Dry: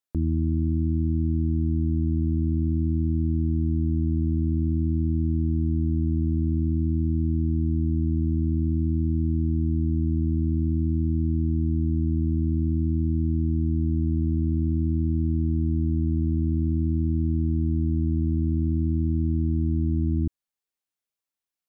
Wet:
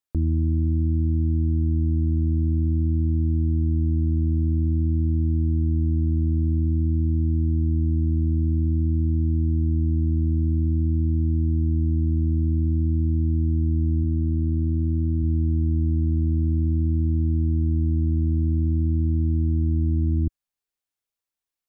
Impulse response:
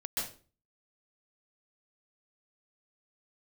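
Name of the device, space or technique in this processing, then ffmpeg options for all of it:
low shelf boost with a cut just above: -filter_complex "[0:a]lowshelf=f=92:g=6.5,equalizer=f=190:t=o:w=0.64:g=-4,asplit=3[a][b][c];[a]afade=t=out:st=14.03:d=0.02[d];[b]highpass=63,afade=t=in:st=14.03:d=0.02,afade=t=out:st=15.22:d=0.02[e];[c]afade=t=in:st=15.22:d=0.02[f];[d][e][f]amix=inputs=3:normalize=0"

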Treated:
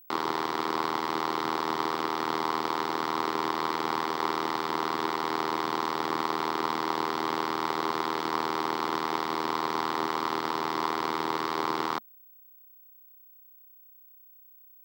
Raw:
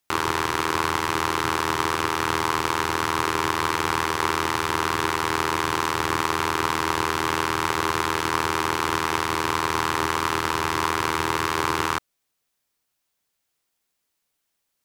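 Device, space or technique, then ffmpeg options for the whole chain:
old television with a line whistle: -af "highpass=f=170:w=0.5412,highpass=f=170:w=1.3066,equalizer=f=220:t=q:w=4:g=6,equalizer=f=750:t=q:w=4:g=4,equalizer=f=1.6k:t=q:w=4:g=-7,equalizer=f=2.6k:t=q:w=4:g=-10,equalizer=f=6.5k:t=q:w=4:g=-10,lowpass=f=6.7k:w=0.5412,lowpass=f=6.7k:w=1.3066,aeval=exprs='val(0)+0.00447*sin(2*PI*15734*n/s)':c=same,volume=-4.5dB"

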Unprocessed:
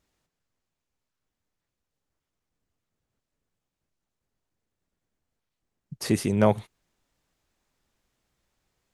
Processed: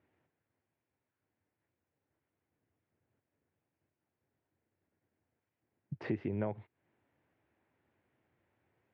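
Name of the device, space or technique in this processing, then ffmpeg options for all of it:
bass amplifier: -af "acompressor=threshold=-35dB:ratio=6,highpass=f=89:w=0.5412,highpass=f=89:w=1.3066,equalizer=f=92:t=q:w=4:g=4,equalizer=f=180:t=q:w=4:g=-5,equalizer=f=330:t=q:w=4:g=4,equalizer=f=1.2k:t=q:w=4:g=-6,lowpass=f=2.3k:w=0.5412,lowpass=f=2.3k:w=1.3066,volume=2dB"

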